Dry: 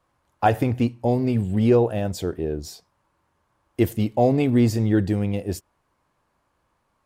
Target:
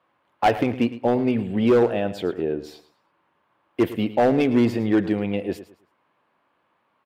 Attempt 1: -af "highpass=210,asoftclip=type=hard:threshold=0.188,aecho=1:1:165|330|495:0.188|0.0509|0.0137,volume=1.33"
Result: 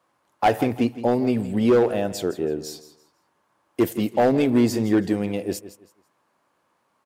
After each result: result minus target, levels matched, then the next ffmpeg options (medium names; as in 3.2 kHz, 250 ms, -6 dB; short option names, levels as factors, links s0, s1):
8 kHz band +12.0 dB; echo 56 ms late
-af "highpass=210,highshelf=f=4400:t=q:w=1.5:g=-13,asoftclip=type=hard:threshold=0.188,aecho=1:1:165|330|495:0.188|0.0509|0.0137,volume=1.33"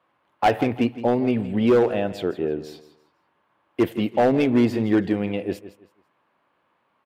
echo 56 ms late
-af "highpass=210,highshelf=f=4400:t=q:w=1.5:g=-13,asoftclip=type=hard:threshold=0.188,aecho=1:1:109|218|327:0.188|0.0509|0.0137,volume=1.33"